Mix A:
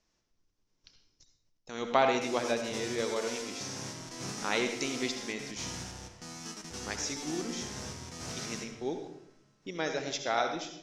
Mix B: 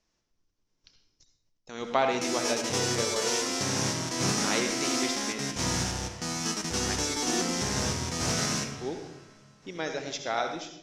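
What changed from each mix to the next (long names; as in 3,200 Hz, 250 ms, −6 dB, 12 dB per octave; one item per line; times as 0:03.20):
background +12.0 dB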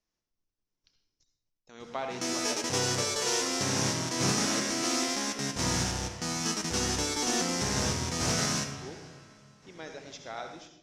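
speech −10.0 dB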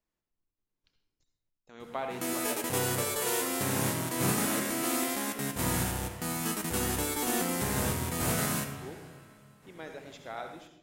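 master: remove low-pass with resonance 5,700 Hz, resonance Q 4.7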